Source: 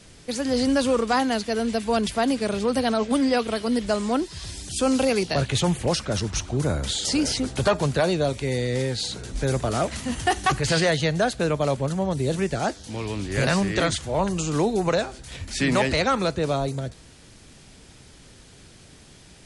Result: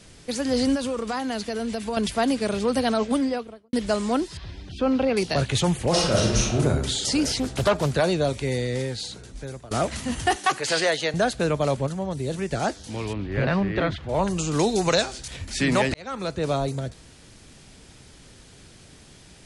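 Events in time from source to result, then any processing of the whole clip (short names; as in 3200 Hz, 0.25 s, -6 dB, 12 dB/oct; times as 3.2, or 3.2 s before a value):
0.75–1.97 compressor, threshold -24 dBFS
3–3.73 studio fade out
4.37–5.17 air absorption 310 m
5.89–6.59 reverb throw, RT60 0.95 s, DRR -4.5 dB
7.24–7.91 Doppler distortion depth 0.34 ms
8.47–9.71 fade out, to -20.5 dB
10.36–11.14 HPF 360 Hz
11.87–12.51 gain -4 dB
13.13–14.09 air absorption 350 m
14.59–15.28 bell 5500 Hz +10.5 dB 2.2 oct
15.94–16.52 fade in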